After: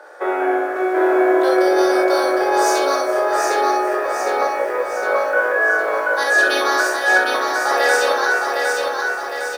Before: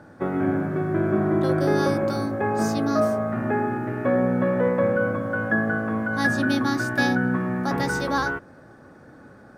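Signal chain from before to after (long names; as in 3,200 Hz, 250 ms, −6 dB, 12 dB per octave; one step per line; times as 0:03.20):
Butterworth high-pass 410 Hz 48 dB per octave
compressor whose output falls as the input rises −26 dBFS, ratio −0.5
on a send: ambience of single reflections 25 ms −10 dB, 66 ms −13.5 dB
on the sum: reverb whose tail is shaped and stops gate 80 ms rising, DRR 0 dB
feedback echo at a low word length 759 ms, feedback 55%, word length 9 bits, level −3.5 dB
level +6.5 dB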